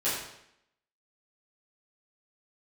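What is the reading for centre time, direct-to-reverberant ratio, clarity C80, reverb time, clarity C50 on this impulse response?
58 ms, −12.0 dB, 4.5 dB, 0.75 s, 2.0 dB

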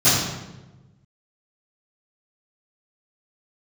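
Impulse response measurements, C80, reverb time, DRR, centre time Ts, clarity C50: 2.5 dB, 1.1 s, −20.0 dB, 77 ms, 0.0 dB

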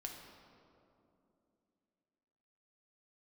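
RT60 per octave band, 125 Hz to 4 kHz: 3.1, 3.6, 3.1, 2.5, 1.7, 1.4 seconds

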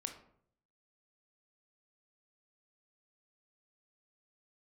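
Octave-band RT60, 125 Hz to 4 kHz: 0.90, 0.75, 0.70, 0.55, 0.45, 0.35 seconds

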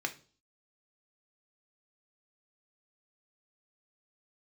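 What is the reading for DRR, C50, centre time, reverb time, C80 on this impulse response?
5.0 dB, 15.5 dB, 6 ms, 0.40 s, 21.5 dB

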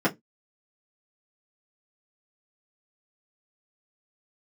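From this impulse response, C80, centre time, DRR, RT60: 33.5 dB, 10 ms, −7.0 dB, 0.15 s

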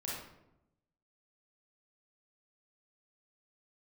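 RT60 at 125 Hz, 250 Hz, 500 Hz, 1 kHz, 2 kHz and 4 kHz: 1.2, 1.1, 0.95, 0.80, 0.65, 0.50 seconds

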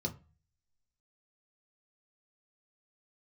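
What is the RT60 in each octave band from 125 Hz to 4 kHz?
0.60, 0.40, 0.30, 0.35, 0.30, 0.25 seconds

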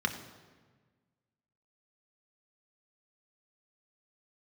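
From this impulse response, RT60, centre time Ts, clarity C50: 1.4 s, 17 ms, 10.0 dB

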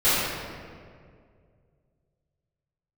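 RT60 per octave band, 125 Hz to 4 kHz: 3.1, 2.4, 2.4, 1.9, 1.7, 1.2 seconds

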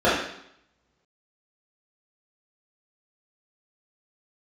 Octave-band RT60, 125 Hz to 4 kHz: 1.0, 0.75, 0.70, 0.75, 0.70, 0.75 seconds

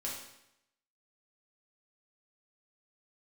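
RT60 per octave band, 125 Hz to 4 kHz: 0.85, 0.85, 0.80, 0.80, 0.80, 0.80 seconds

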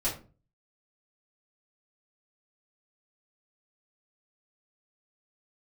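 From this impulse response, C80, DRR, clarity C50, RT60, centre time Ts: 13.5 dB, −9.5 dB, 8.0 dB, 0.35 s, 27 ms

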